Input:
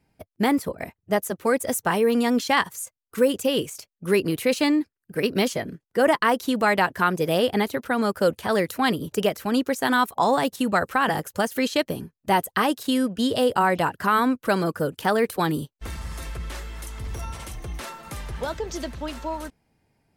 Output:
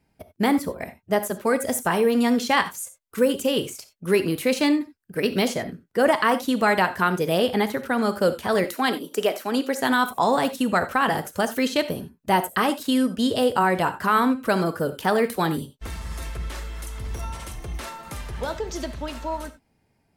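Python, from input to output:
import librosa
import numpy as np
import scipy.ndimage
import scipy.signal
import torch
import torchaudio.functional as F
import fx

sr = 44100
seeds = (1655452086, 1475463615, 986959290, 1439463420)

y = fx.highpass(x, sr, hz=250.0, slope=24, at=(8.64, 9.81))
y = fx.rev_gated(y, sr, seeds[0], gate_ms=110, shape='flat', drr_db=10.5)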